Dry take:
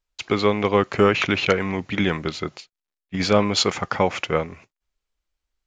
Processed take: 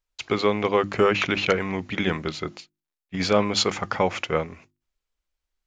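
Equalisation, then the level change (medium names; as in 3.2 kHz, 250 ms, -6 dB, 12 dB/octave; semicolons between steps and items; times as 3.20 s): hum notches 50/100/150/200/250/300/350 Hz; -2.0 dB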